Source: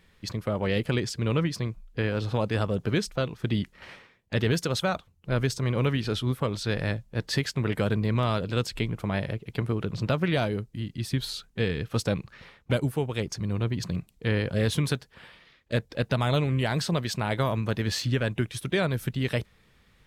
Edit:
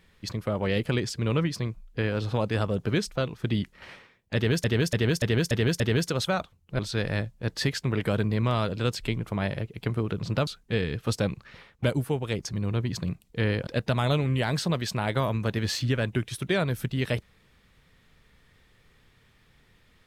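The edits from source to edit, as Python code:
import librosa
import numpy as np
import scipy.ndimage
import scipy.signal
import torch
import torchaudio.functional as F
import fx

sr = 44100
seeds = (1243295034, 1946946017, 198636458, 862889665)

y = fx.edit(x, sr, fx.repeat(start_s=4.35, length_s=0.29, count=6),
    fx.cut(start_s=5.34, length_s=1.17),
    fx.cut(start_s=10.19, length_s=1.15),
    fx.cut(start_s=14.54, length_s=1.36), tone=tone)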